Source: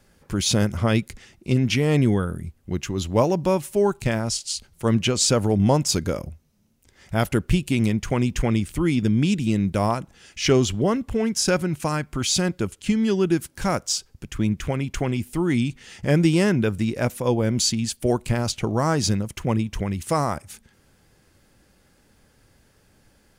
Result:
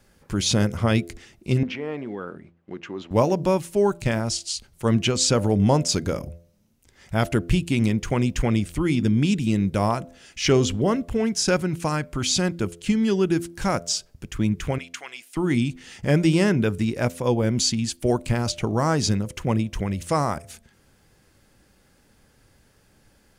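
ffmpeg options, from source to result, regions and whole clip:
-filter_complex "[0:a]asettb=1/sr,asplit=3[a][b][c];[a]atrim=end=1.634[d];[b]atrim=start=1.63:end=3.11,asetpts=PTS-STARTPTS,afade=t=in:d=0.004:c=qsin,afade=t=out:st=1.476:d=0.004:c=qsin,acompressor=threshold=-20dB:ratio=10:attack=3.2:release=140:knee=1:detection=peak,acrusher=bits=8:mode=log:mix=0:aa=0.000001,highpass=320,lowpass=2.1k[e];[c]atrim=start=3.106[f];[d][e]acrossfade=d=0.004:c1=hsin:c2=qsin[g];[g][f]acrossfade=d=0.004:c1=qsin:c2=hsin,asettb=1/sr,asplit=3[h][i][j];[h]atrim=end=14.784[k];[i]atrim=start=14.78:end=15.37,asetpts=PTS-STARTPTS,afade=t=in:d=0.004:c=qsin,afade=t=out:st=0.586:d=0.004:c=qsin,highpass=1.4k,highshelf=f=11k:g=-9.5[l];[j]atrim=start=15.366[m];[k][l]acrossfade=d=0.004:c1=hsin:c2=qsin[n];[n][m]acrossfade=d=0.004:c1=qsin:c2=hsin,bandreject=f=85.19:t=h:w=4,bandreject=f=170.38:t=h:w=4,bandreject=f=255.57:t=h:w=4,bandreject=f=340.76:t=h:w=4,bandreject=f=425.95:t=h:w=4,bandreject=f=511.14:t=h:w=4,bandreject=f=596.33:t=h:w=4,bandreject=f=681.52:t=h:w=4,acrossover=split=9500[o][p];[p]acompressor=threshold=-48dB:ratio=4:attack=1:release=60[q];[o][q]amix=inputs=2:normalize=0"

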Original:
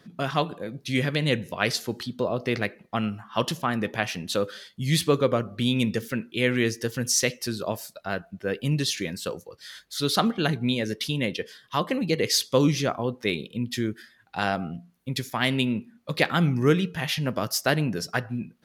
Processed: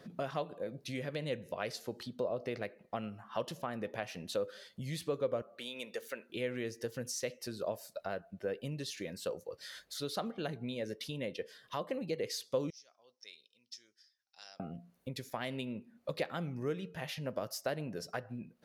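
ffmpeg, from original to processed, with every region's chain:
-filter_complex "[0:a]asettb=1/sr,asplit=3[a][b][c];[a]atrim=end=5.424[d];[b]atrim=start=5.42:end=6.3,asetpts=PTS-STARTPTS,afade=t=in:d=0.004:c=qsin,afade=t=out:st=0.876:d=0.004:c=qsin,highpass=570,bandreject=f=5.2k:w=11[e];[c]atrim=start=6.296[f];[d][e]acrossfade=d=0.004:c1=hsin:c2=qsin[g];[g][f]acrossfade=d=0.004:c1=qsin:c2=hsin,asettb=1/sr,asplit=3[h][i][j];[h]atrim=end=12.704[k];[i]atrim=start=12.7:end=14.6,asetpts=PTS-STARTPTS,afade=t=in:d=0.004:c=qsin,afade=t=out:st=1.896:d=0.004:c=qsin,bandpass=f=5.5k:t=q:w=8,aeval=exprs='0.0376*(abs(mod(val(0)/0.0376+3,4)-2)-1)':c=same[l];[j]atrim=start=14.596[m];[k][l]acrossfade=d=0.004:c1=hsin:c2=qsin[n];[n][m]acrossfade=d=0.004:c1=qsin:c2=hsin,acompressor=threshold=-43dB:ratio=2.5,equalizer=f=560:t=o:w=0.86:g=9.5,bandreject=f=3.3k:w=25,volume=-2.5dB"

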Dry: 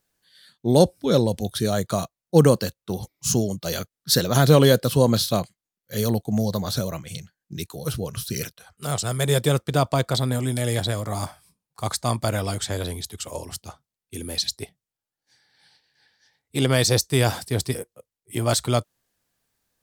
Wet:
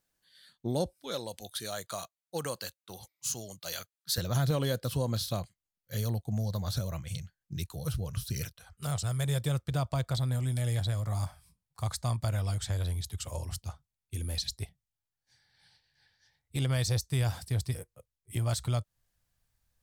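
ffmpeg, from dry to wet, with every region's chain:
-filter_complex "[0:a]asettb=1/sr,asplit=3[a][b][c];[a]atrim=end=0.934[d];[b]atrim=start=0.93:end=4.18,asetpts=PTS-STARTPTS,afade=t=in:d=0.004:c=qsin,afade=t=out:st=3.246:d=0.004:c=qsin,highpass=f=1.1k:p=1,bandreject=f=5.5k:w=14[e];[c]atrim=start=4.176[f];[d][e]acrossfade=d=0.004:c1=hsin:c2=qsin[g];[g][f]acrossfade=d=0.004:c1=qsin:c2=hsin,asubboost=boost=7.5:cutoff=96,acompressor=threshold=-26dB:ratio=2,equalizer=f=420:t=o:w=0.23:g=-4,volume=-6dB"

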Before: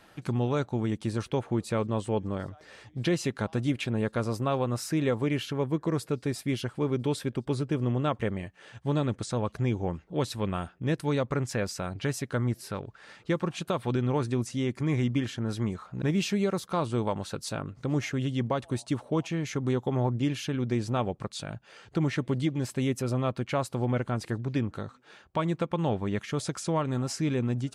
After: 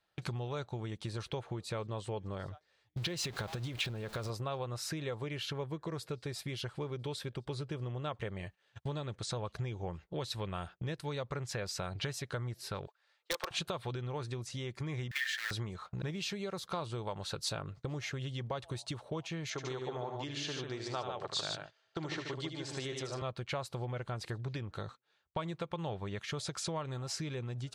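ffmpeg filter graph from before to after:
-filter_complex "[0:a]asettb=1/sr,asplit=3[a][b][c];[a]atrim=end=2.974[d];[b]atrim=start=2.97:end=4.3,asetpts=PTS-STARTPTS,afade=t=in:d=0.004:c=qsin,afade=t=out:st=1.326:d=0.004:c=qsin,aeval=exprs='val(0)+0.5*0.01*sgn(val(0))':c=same,acompressor=threshold=-27dB:ratio=6:attack=3.2:release=140:knee=1:detection=peak[e];[c]atrim=start=4.296[f];[d][e]acrossfade=d=0.004:c1=hsin:c2=qsin[g];[g][f]acrossfade=d=0.004:c1=qsin:c2=hsin,asettb=1/sr,asplit=3[h][i][j];[h]atrim=end=12.874[k];[i]atrim=start=12.87:end=13.51,asetpts=PTS-STARTPTS,afade=t=in:d=0.004:c=qsin,afade=t=out:st=0.636:d=0.004:c=qsin,highpass=f=500:w=0.5412,highpass=f=500:w=1.3066,aeval=exprs='(mod(15*val(0)+1,2)-1)/15':c=same[l];[j]atrim=start=13.506[m];[k][l]acrossfade=d=0.004:c1=hsin:c2=qsin[n];[n][m]acrossfade=d=0.004:c1=qsin:c2=hsin,asettb=1/sr,asplit=3[o][p][q];[o]atrim=end=15.114[r];[p]atrim=start=15.11:end=15.51,asetpts=PTS-STARTPTS,afade=t=in:d=0.004:c=qsin,afade=t=out:st=0.396:d=0.004:c=qsin,aemphasis=mode=production:type=cd,acrusher=bits=3:mode=log:mix=0:aa=0.000001,highpass=f=1.8k:t=q:w=8.1[s];[q]atrim=start=15.506[t];[r][s]acrossfade=d=0.004:c1=hsin:c2=qsin[u];[u][t]acrossfade=d=0.004:c1=qsin:c2=hsin,asettb=1/sr,asplit=3[v][w][x];[v]atrim=end=19.504[y];[w]atrim=start=19.5:end=23.22,asetpts=PTS-STARTPTS,afade=t=in:d=0.004:c=qsin,afade=t=out:st=3.716:d=0.004:c=qsin,aeval=exprs='val(0)+0.00126*sin(2*PI*650*n/s)':c=same,highpass=210,equalizer=f=210:t=q:w=4:g=-9,equalizer=f=510:t=q:w=4:g=-4,equalizer=f=2.4k:t=q:w=4:g=-4,lowpass=f=7.9k:w=0.5412,lowpass=f=7.9k:w=1.3066,aecho=1:1:77|147:0.447|0.531,atrim=end_sample=164052[z];[x]atrim=start=23.216[aa];[y][z]acrossfade=d=0.004:c1=hsin:c2=qsin[ab];[ab][aa]acrossfade=d=0.004:c1=qsin:c2=hsin,agate=range=-26dB:threshold=-43dB:ratio=16:detection=peak,acompressor=threshold=-36dB:ratio=5,equalizer=f=250:t=o:w=0.67:g=-12,equalizer=f=4k:t=o:w=0.67:g=6,equalizer=f=10k:t=o:w=0.67:g=-3,volume=2.5dB"

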